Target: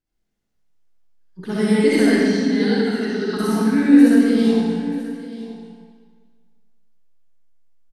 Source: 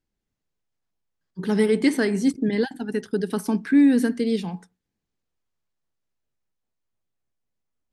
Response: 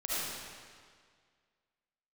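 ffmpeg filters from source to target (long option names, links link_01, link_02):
-filter_complex "[0:a]asettb=1/sr,asplit=3[link_01][link_02][link_03];[link_01]atrim=end=2.104[link_04];[link_02]atrim=start=2.1:end=3.37,asetpts=PTS-STARTPTS,afade=type=in:duration=0.004:curve=qsin,afade=type=out:start_time=1.266:duration=0.004:curve=qsin,highpass=130,equalizer=frequency=600:width_type=q:width=4:gain=-7,equalizer=frequency=1300:width_type=q:width=4:gain=7,equalizer=frequency=4100:width_type=q:width=4:gain=8,lowpass=frequency=6100:width=0.5412,lowpass=frequency=6100:width=1.3066[link_05];[link_03]atrim=start=3.366[link_06];[link_04][link_05]acrossfade=duration=0.004:curve1=hsin:curve2=qsin[link_07];[link_07][link_06]acrossfade=duration=0.004:curve1=qsin:curve2=hsin,aecho=1:1:935:0.158[link_08];[1:a]atrim=start_sample=2205,asetrate=48510,aresample=44100[link_09];[link_08][link_09]afir=irnorm=-1:irlink=0"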